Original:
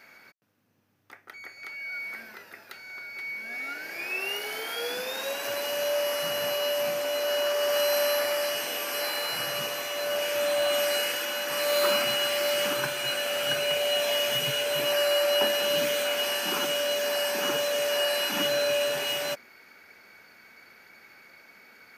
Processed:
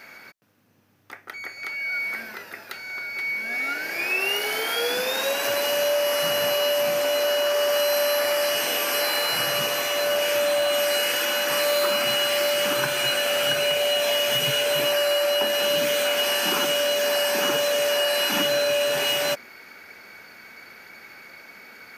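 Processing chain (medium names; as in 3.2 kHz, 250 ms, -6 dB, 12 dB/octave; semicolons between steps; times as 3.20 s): compression, threshold -27 dBFS, peak gain reduction 7.5 dB; trim +8 dB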